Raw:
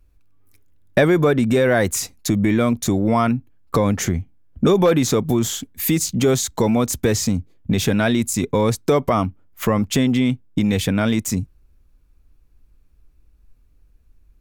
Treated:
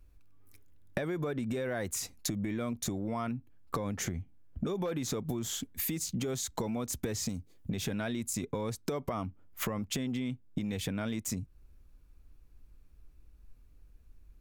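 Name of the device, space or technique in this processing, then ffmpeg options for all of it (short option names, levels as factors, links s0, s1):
serial compression, leveller first: -filter_complex "[0:a]acompressor=threshold=0.112:ratio=2.5,acompressor=threshold=0.0316:ratio=5,asettb=1/sr,asplit=3[s0][s1][s2];[s0]atrim=end=7.294[s3];[s1]atrim=start=7.29:end=7.7,asetpts=PTS-STARTPTS,afade=t=in:d=0.004:c=qsin,afade=t=out:st=0.406:d=0.004:c=qsin,bass=f=250:g=-2,treble=f=4000:g=9[s4];[s2]atrim=start=7.696[s5];[s3][s4]acrossfade=d=0.004:c1=hsin:c2=qsin[s6];[s6][s5]acrossfade=d=0.004:c1=qsin:c2=hsin,volume=0.75"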